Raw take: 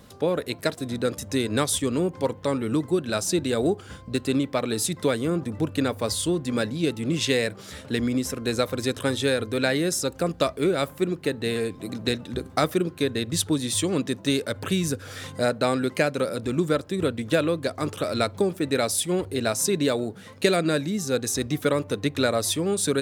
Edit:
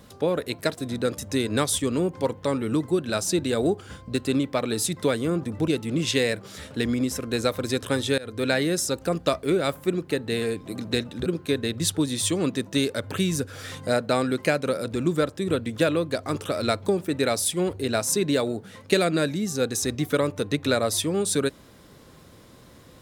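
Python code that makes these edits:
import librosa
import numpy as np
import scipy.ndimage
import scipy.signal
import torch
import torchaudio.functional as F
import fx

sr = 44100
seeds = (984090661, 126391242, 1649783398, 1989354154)

y = fx.edit(x, sr, fx.cut(start_s=5.68, length_s=1.14),
    fx.fade_in_from(start_s=9.32, length_s=0.25, floor_db=-24.0),
    fx.cut(start_s=12.4, length_s=0.38), tone=tone)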